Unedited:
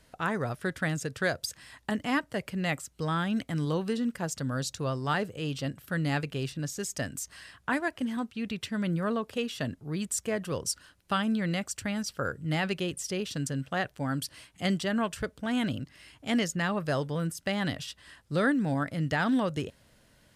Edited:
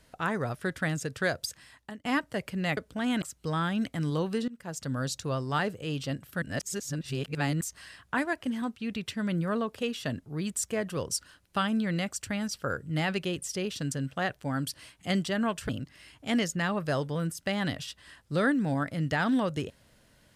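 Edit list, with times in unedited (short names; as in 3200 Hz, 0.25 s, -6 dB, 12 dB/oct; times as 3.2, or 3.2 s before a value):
1.44–2.05 fade out, to -22 dB
4.03–4.47 fade in, from -22 dB
5.97–7.16 reverse
15.24–15.69 move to 2.77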